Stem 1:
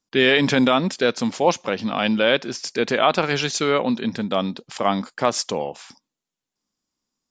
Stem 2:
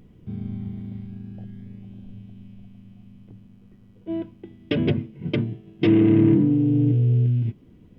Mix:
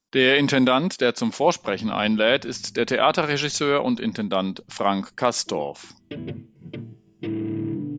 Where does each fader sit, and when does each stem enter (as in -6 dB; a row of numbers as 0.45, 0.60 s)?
-1.0, -11.5 dB; 0.00, 1.40 s